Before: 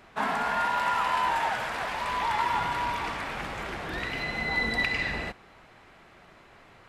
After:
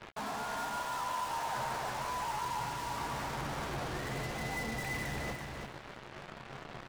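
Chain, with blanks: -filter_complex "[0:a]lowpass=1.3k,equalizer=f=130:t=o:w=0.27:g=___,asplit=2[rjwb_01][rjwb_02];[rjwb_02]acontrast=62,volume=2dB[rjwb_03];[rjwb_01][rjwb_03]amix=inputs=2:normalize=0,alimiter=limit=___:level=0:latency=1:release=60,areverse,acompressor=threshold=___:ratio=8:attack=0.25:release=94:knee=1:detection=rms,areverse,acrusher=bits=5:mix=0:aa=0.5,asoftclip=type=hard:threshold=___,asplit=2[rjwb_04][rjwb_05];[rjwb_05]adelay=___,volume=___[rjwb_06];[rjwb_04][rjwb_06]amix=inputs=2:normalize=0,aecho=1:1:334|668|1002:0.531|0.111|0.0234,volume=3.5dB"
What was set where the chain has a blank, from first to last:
9.5, -13.5dB, -30dB, -39dB, 14, -10.5dB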